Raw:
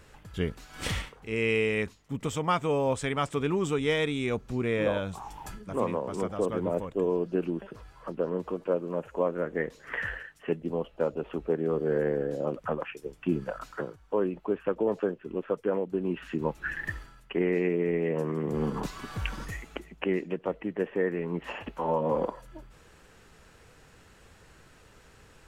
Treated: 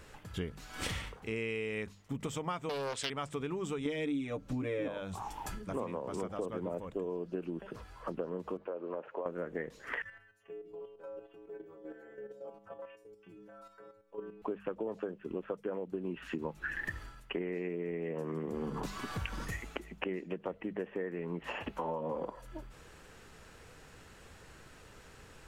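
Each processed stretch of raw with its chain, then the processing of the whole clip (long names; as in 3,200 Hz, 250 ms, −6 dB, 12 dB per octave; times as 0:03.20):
0:02.69–0:03.10: meter weighting curve D + highs frequency-modulated by the lows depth 0.5 ms
0:03.85–0:04.88: comb filter 6.8 ms, depth 89% + hollow resonant body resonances 280/550 Hz, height 13 dB, ringing for 90 ms
0:08.57–0:09.26: high-pass filter 390 Hz + downward compressor, threshold −30 dBFS + high-frequency loss of the air 340 metres
0:10.02–0:14.42: parametric band 260 Hz −9 dB 0.4 octaves + stiff-string resonator 100 Hz, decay 0.78 s, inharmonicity 0.008 + output level in coarse steps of 9 dB
whole clip: mains-hum notches 50/100/150/200 Hz; downward compressor 6 to 1, threshold −35 dBFS; level +1 dB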